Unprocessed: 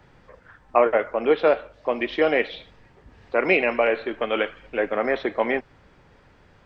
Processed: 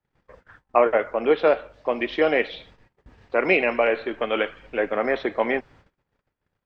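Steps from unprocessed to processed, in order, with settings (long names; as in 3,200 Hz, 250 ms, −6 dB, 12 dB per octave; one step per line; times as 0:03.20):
noise gate −50 dBFS, range −31 dB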